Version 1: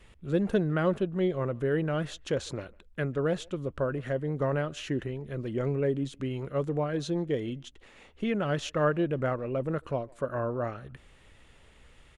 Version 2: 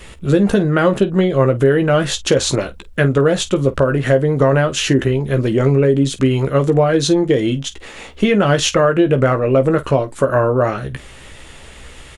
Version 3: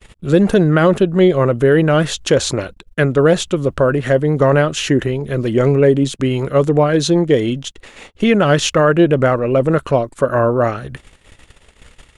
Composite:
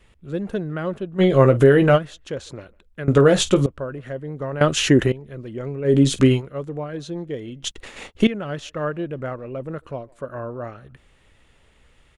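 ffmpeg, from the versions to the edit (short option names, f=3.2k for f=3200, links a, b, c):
-filter_complex "[1:a]asplit=3[a][b][c];[2:a]asplit=2[d][e];[0:a]asplit=6[f][g][h][i][j][k];[f]atrim=end=1.22[l];[a]atrim=start=1.18:end=1.99[m];[g]atrim=start=1.95:end=3.082[n];[b]atrim=start=3.078:end=3.662[o];[h]atrim=start=3.658:end=4.612[p];[d]atrim=start=4.608:end=5.122[q];[i]atrim=start=5.118:end=5.94[r];[c]atrim=start=5.84:end=6.42[s];[j]atrim=start=6.32:end=7.632[t];[e]atrim=start=7.628:end=8.272[u];[k]atrim=start=8.268[v];[l][m]acrossfade=d=0.04:c1=tri:c2=tri[w];[w][n]acrossfade=d=0.04:c1=tri:c2=tri[x];[x][o]acrossfade=d=0.004:c1=hsin:c2=hsin[y];[y][p]acrossfade=d=0.004:c1=hsin:c2=hsin[z];[z][q]acrossfade=d=0.004:c1=hsin:c2=hsin[aa];[aa][r]acrossfade=d=0.004:c1=hsin:c2=hsin[ab];[ab][s]acrossfade=d=0.1:c1=tri:c2=tri[ac];[ac][t]acrossfade=d=0.1:c1=tri:c2=tri[ad];[ad][u]acrossfade=d=0.004:c1=hsin:c2=hsin[ae];[ae][v]acrossfade=d=0.004:c1=hsin:c2=hsin"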